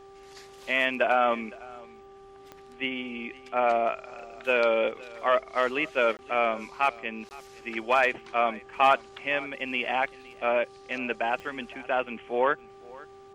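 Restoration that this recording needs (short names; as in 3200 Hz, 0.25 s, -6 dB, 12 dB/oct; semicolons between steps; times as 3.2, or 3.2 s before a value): de-click; de-hum 392.7 Hz, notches 3; interpolate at 6.17/7.29, 19 ms; inverse comb 0.511 s -21.5 dB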